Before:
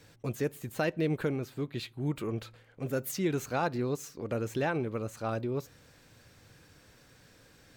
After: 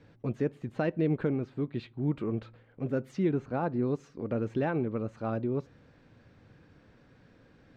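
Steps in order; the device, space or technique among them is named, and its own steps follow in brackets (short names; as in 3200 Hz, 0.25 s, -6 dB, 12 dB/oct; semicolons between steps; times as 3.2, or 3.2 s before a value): 3.29–3.83 high shelf 2100 Hz -9.5 dB; phone in a pocket (LPF 4000 Hz 12 dB/oct; bell 230 Hz +5 dB 1.1 oct; high shelf 2300 Hz -10 dB)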